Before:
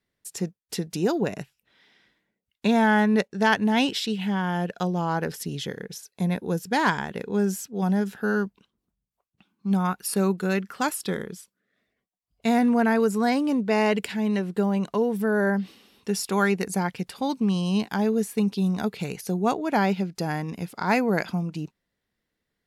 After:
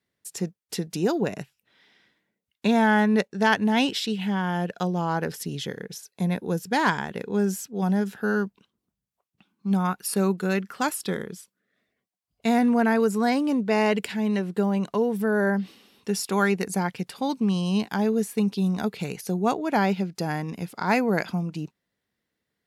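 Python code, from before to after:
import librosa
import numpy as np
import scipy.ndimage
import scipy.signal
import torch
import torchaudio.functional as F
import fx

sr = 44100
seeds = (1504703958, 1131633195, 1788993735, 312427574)

y = scipy.signal.sosfilt(scipy.signal.butter(2, 76.0, 'highpass', fs=sr, output='sos'), x)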